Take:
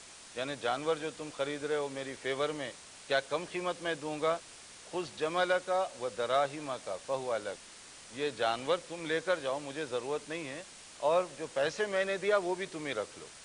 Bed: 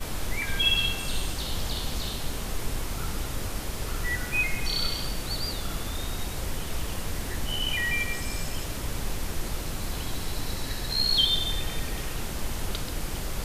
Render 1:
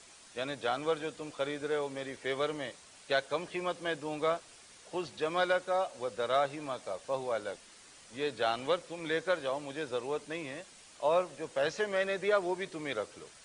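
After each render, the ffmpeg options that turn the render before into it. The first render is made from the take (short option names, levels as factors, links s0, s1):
-af "afftdn=nr=6:nf=-52"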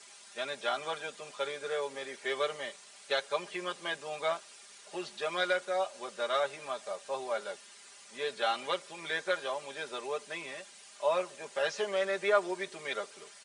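-af "highpass=f=630:p=1,aecho=1:1:5:0.87"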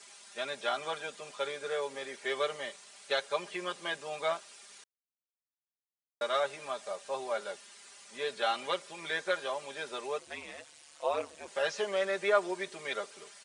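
-filter_complex "[0:a]asettb=1/sr,asplit=3[s0][s1][s2];[s0]atrim=end=10.194[s3];[s1]atrim=start=10.19:end=11.48,asetpts=PTS-STARTPTS,afade=t=in:d=0.004:c=qsin,afade=t=out:st=1.286:d=0.004:c=qsin,aeval=exprs='val(0)*sin(2*PI*74*n/s)':c=same[s4];[s2]atrim=start=11.476[s5];[s3][s4]acrossfade=d=0.004:c1=hsin:c2=qsin[s6];[s6][s5]acrossfade=d=0.004:c1=qsin:c2=hsin,asplit=3[s7][s8][s9];[s7]atrim=end=4.84,asetpts=PTS-STARTPTS,afade=t=out:st=4.836:d=0.004:c=hsin[s10];[s8]atrim=start=4.84:end=6.21,asetpts=PTS-STARTPTS,volume=0[s11];[s9]atrim=start=6.21,asetpts=PTS-STARTPTS,afade=t=in:d=0.004:c=hsin[s12];[s10][s11][s12]concat=n=3:v=0:a=1"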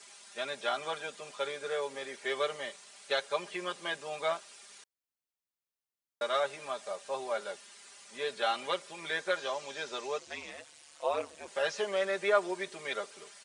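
-filter_complex "[0:a]asettb=1/sr,asplit=3[s0][s1][s2];[s0]atrim=end=9.374[s3];[s1]atrim=start=9.37:end=10.5,asetpts=PTS-STARTPTS,afade=t=in:d=0.004:c=qsin,afade=t=out:st=1.126:d=0.004:c=qsin,lowpass=f=6300:t=q:w=1.8[s4];[s2]atrim=start=10.496[s5];[s3][s4]acrossfade=d=0.004:c1=hsin:c2=qsin[s6];[s6][s5]acrossfade=d=0.004:c1=qsin:c2=hsin"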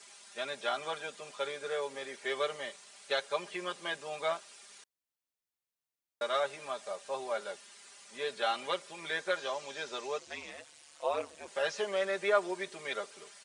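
-af "volume=0.891"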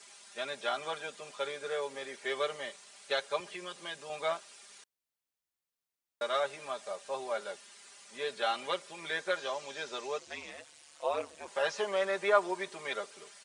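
-filter_complex "[0:a]asettb=1/sr,asplit=3[s0][s1][s2];[s0]atrim=end=3.404[s3];[s1]atrim=start=3.4:end=4.1,asetpts=PTS-STARTPTS,afade=t=in:d=0.004:c=qsin,afade=t=out:st=0.696:d=0.004:c=qsin,acrossover=split=150|3000[s4][s5][s6];[s5]acompressor=threshold=0.00562:ratio=2:attack=3.2:release=140:knee=2.83:detection=peak[s7];[s4][s7][s6]amix=inputs=3:normalize=0[s8];[s2]atrim=start=4.096[s9];[s3][s8]acrossfade=d=0.004:c1=hsin:c2=qsin[s10];[s10][s9]acrossfade=d=0.004:c1=qsin:c2=hsin,asettb=1/sr,asplit=3[s11][s12][s13];[s11]atrim=end=11.404[s14];[s12]atrim=start=11.4:end=12.95,asetpts=PTS-STARTPTS,afade=t=in:d=0.004:c=qsin,afade=t=out:st=1.546:d=0.004:c=qsin,equalizer=f=970:t=o:w=0.71:g=6[s15];[s13]atrim=start=12.946[s16];[s14][s15]acrossfade=d=0.004:c1=hsin:c2=qsin[s17];[s17][s16]acrossfade=d=0.004:c1=qsin:c2=hsin"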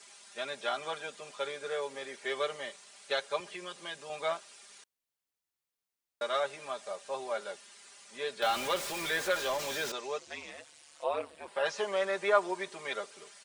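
-filter_complex "[0:a]asettb=1/sr,asplit=3[s0][s1][s2];[s0]atrim=end=8.424[s3];[s1]atrim=start=8.42:end=9.92,asetpts=PTS-STARTPTS,afade=t=in:d=0.004:c=qsin,afade=t=out:st=1.496:d=0.004:c=qsin,aeval=exprs='val(0)+0.5*0.0211*sgn(val(0))':c=same[s4];[s2]atrim=start=9.916[s5];[s3][s4]acrossfade=d=0.004:c1=hsin:c2=qsin[s6];[s6][s5]acrossfade=d=0.004:c1=qsin:c2=hsin,asettb=1/sr,asplit=3[s7][s8][s9];[s7]atrim=end=11.044[s10];[s8]atrim=start=11.04:end=11.66,asetpts=PTS-STARTPTS,afade=t=in:d=0.004:c=qsin,afade=t=out:st=0.616:d=0.004:c=qsin,equalizer=f=6400:w=2.2:g=-13[s11];[s9]atrim=start=11.656[s12];[s10][s11]acrossfade=d=0.004:c1=hsin:c2=qsin[s13];[s13][s12]acrossfade=d=0.004:c1=qsin:c2=hsin"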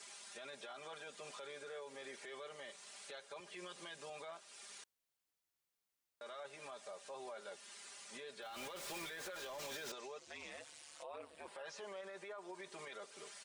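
-af "acompressor=threshold=0.00501:ratio=2.5,alimiter=level_in=7.08:limit=0.0631:level=0:latency=1:release=15,volume=0.141"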